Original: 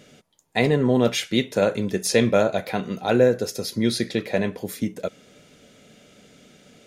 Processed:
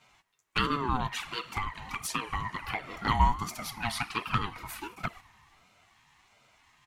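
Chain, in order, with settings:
bit-depth reduction 12 bits, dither none
high-pass filter 500 Hz 12 dB per octave
dense smooth reverb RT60 3.3 s, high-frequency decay 0.8×, DRR 16.5 dB
noise gate −42 dBFS, range −7 dB
parametric band 1,500 Hz +13 dB 0.86 octaves
comb filter 3.5 ms, depth 34%
0:00.96–0:02.97: downward compressor 4 to 1, threshold −24 dBFS, peak gain reduction 11.5 dB
flanger swept by the level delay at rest 10.8 ms, full sweep at −20.5 dBFS
dynamic equaliser 5,300 Hz, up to −5 dB, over −45 dBFS, Q 1.1
ring modulator whose carrier an LFO sweeps 590 Hz, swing 25%, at 1.4 Hz

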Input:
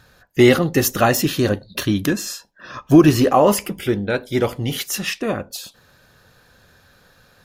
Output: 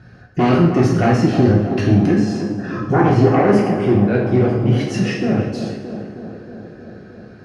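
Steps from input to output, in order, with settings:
spectral tilt −3.5 dB per octave
notch filter 1,200 Hz, Q 18
in parallel at +1.5 dB: downward compressor, threshold −28 dBFS, peak gain reduction 25.5 dB
on the sum: sine wavefolder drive 4 dB, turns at 0.5 dBFS
loudspeaker in its box 110–7,800 Hz, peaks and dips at 520 Hz −4 dB, 960 Hz −9 dB, 3,600 Hz −9 dB, 7,200 Hz −9 dB
on a send: tape delay 313 ms, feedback 82%, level −7 dB, low-pass 1,300 Hz
on the sum: coupled-rooms reverb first 0.7 s, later 2.3 s, DRR −3 dB
level −11.5 dB

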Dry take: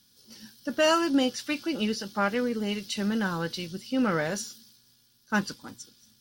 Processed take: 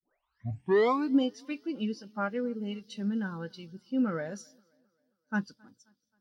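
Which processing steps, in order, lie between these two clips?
turntable start at the beginning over 1.17 s
tape delay 266 ms, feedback 65%, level −19.5 dB, low-pass 5,100 Hz
every bin expanded away from the loudest bin 1.5 to 1
level −4 dB

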